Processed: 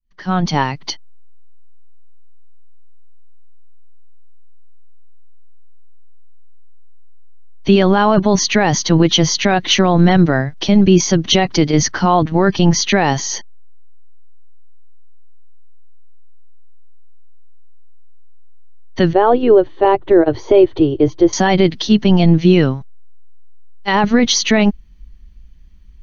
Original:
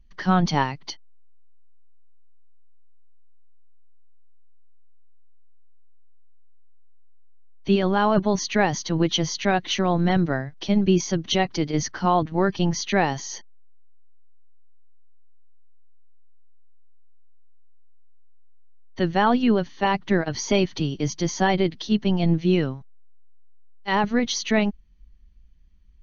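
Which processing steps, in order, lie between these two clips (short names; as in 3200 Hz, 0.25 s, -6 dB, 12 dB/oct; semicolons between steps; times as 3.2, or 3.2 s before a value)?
opening faded in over 1.10 s; 19.13–21.33 EQ curve 120 Hz 0 dB, 200 Hz -22 dB, 330 Hz +7 dB, 540 Hz +4 dB, 840 Hz -2 dB, 1400 Hz -7 dB, 2000 Hz -12 dB, 3700 Hz -12 dB, 5300 Hz -25 dB; maximiser +13 dB; gain -1 dB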